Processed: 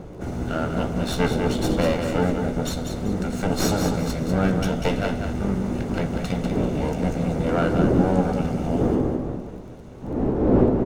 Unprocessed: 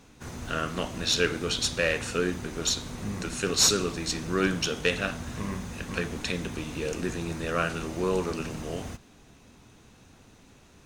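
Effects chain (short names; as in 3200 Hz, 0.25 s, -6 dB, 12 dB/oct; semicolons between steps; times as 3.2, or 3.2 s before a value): minimum comb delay 1.4 ms; wind noise 440 Hz -38 dBFS; in parallel at -1.5 dB: compressor, threshold -38 dBFS, peak gain reduction 18 dB; on the sum: tilt shelf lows +6.5 dB, about 1400 Hz; doubler 16 ms -10.5 dB; crackle 15/s -39 dBFS; on a send: feedback echo 0.194 s, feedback 30%, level -6.5 dB; on the sum: dynamic EQ 290 Hz, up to +7 dB, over -36 dBFS, Q 0.86; gain -2 dB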